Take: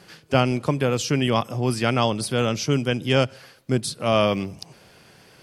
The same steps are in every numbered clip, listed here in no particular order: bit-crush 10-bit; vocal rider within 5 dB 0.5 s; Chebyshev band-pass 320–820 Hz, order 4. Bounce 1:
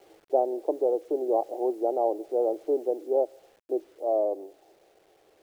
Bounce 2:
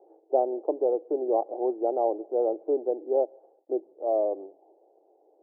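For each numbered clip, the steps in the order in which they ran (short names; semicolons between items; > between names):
Chebyshev band-pass > bit-crush > vocal rider; bit-crush > Chebyshev band-pass > vocal rider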